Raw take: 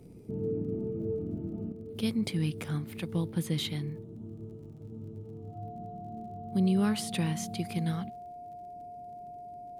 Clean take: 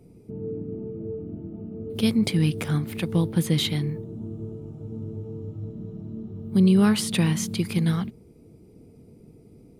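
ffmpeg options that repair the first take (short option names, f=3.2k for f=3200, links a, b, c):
-af "adeclick=t=4,bandreject=f=710:w=30,asetnsamples=n=441:p=0,asendcmd='1.72 volume volume 8.5dB',volume=0dB"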